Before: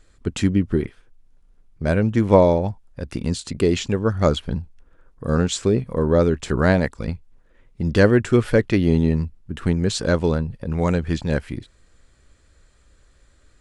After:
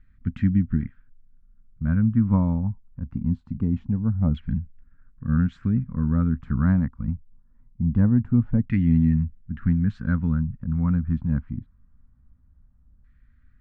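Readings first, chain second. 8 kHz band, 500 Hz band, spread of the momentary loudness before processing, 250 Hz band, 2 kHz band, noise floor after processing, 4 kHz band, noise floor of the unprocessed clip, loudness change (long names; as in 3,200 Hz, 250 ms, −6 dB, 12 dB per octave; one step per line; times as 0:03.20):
below −40 dB, −23.5 dB, 14 LU, −1.5 dB, −13.0 dB, −58 dBFS, below −25 dB, −56 dBFS, −3.0 dB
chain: drawn EQ curve 250 Hz 0 dB, 360 Hz −26 dB, 610 Hz −26 dB, 1,400 Hz −14 dB
auto-filter low-pass saw down 0.23 Hz 770–2,000 Hz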